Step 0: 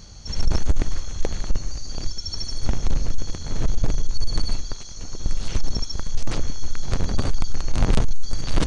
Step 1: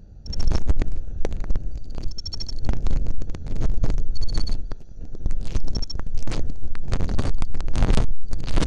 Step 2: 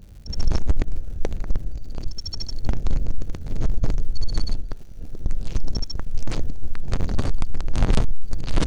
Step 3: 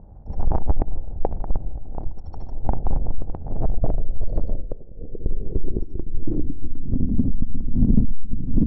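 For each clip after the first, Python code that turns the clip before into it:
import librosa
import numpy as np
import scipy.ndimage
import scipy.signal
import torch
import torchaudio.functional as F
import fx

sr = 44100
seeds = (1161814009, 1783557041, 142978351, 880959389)

y1 = fx.wiener(x, sr, points=41)
y2 = fx.dmg_crackle(y1, sr, seeds[0], per_s=190.0, level_db=-43.0)
y2 = fx.attack_slew(y2, sr, db_per_s=500.0)
y3 = fx.wiener(y2, sr, points=15)
y3 = fx.filter_sweep_lowpass(y3, sr, from_hz=820.0, to_hz=240.0, start_s=3.34, end_s=7.22, q=4.0)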